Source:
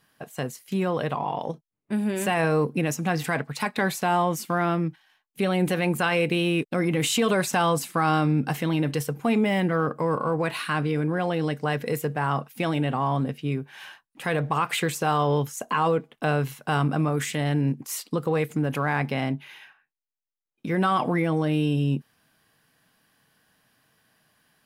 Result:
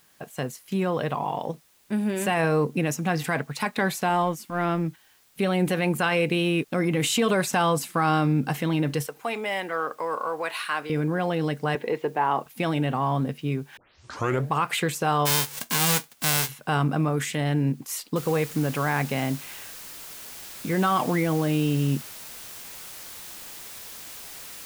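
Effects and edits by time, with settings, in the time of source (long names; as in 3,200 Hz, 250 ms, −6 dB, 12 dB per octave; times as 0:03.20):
0:04.09–0:04.88: transient designer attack −12 dB, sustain −7 dB
0:09.06–0:10.90: high-pass filter 570 Hz
0:11.75–0:12.46: loudspeaker in its box 280–3,700 Hz, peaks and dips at 370 Hz +7 dB, 880 Hz +8 dB, 1,400 Hz −4 dB
0:13.77: tape start 0.70 s
0:15.25–0:16.48: spectral envelope flattened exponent 0.1
0:18.16: noise floor change −61 dB −41 dB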